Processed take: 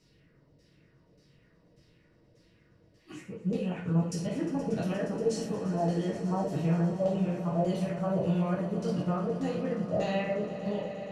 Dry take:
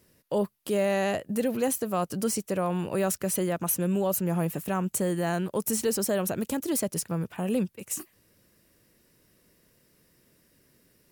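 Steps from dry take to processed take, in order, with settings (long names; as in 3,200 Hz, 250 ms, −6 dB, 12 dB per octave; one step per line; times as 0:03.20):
played backwards from end to start
downward compressor, threshold −29 dBFS, peak gain reduction 7.5 dB
auto-filter low-pass saw down 1.7 Hz 520–5,900 Hz
low-shelf EQ 290 Hz +8.5 dB
notch filter 1,600 Hz, Q 29
echo that builds up and dies away 118 ms, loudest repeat 5, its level −16.5 dB
reverb whose tail is shaped and stops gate 150 ms falling, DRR −4.5 dB
level −9 dB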